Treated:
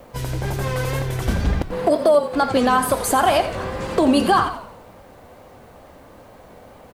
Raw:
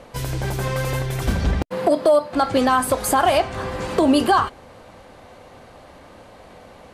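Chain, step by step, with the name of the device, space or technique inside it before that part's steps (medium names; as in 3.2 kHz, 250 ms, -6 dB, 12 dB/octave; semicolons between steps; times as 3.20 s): frequency-shifting echo 87 ms, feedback 47%, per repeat -39 Hz, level -11 dB; plain cassette with noise reduction switched in (tape noise reduction on one side only decoder only; wow and flutter; white noise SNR 41 dB)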